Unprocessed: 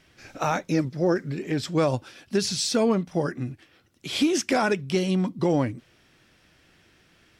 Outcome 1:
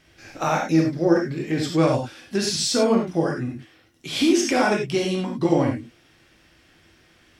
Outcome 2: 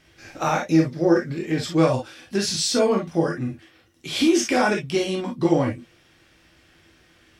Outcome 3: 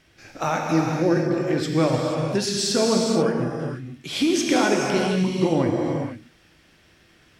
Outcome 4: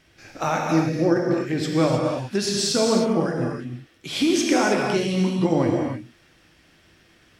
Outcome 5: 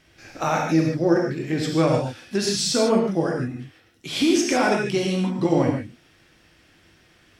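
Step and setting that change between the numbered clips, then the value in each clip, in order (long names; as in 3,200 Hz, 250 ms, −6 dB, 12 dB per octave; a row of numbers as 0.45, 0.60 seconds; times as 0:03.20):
reverb whose tail is shaped and stops, gate: 120, 80, 510, 340, 180 milliseconds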